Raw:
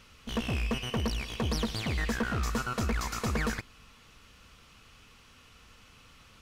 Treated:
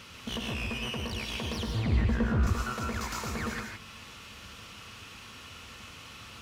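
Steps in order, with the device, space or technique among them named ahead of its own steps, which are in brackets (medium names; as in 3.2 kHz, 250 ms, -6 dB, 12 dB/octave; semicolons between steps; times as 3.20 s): broadcast voice chain (high-pass 78 Hz 12 dB/octave; de-esser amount 80%; compression 4:1, threshold -40 dBFS, peak gain reduction 12.5 dB; peaking EQ 3.2 kHz +2 dB; peak limiter -33 dBFS, peak gain reduction 6 dB); 1.67–2.47 s: tilt EQ -3.5 dB/octave; gated-style reverb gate 180 ms rising, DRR 1.5 dB; trim +7.5 dB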